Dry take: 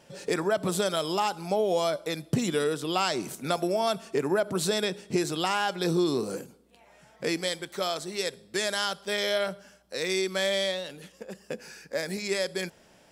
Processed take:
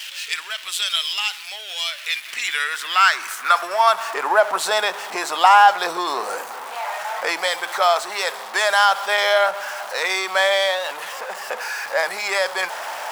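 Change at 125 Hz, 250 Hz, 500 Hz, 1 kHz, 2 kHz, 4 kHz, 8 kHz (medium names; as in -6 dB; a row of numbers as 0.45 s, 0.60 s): under -20 dB, -10.5 dB, +4.0 dB, +14.5 dB, +14.0 dB, +9.0 dB, +6.0 dB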